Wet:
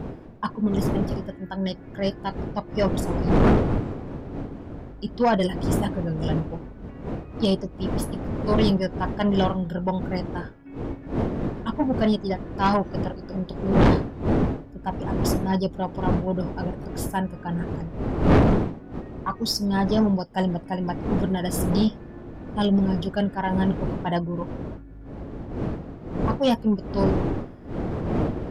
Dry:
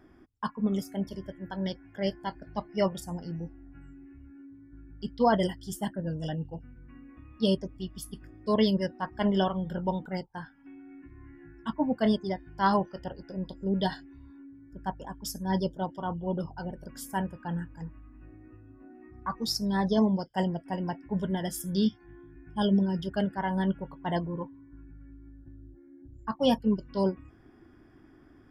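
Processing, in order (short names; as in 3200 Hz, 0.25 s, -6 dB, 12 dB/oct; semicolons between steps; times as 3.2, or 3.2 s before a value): wind noise 320 Hz -28 dBFS; soft clip -18 dBFS, distortion -7 dB; gain +5.5 dB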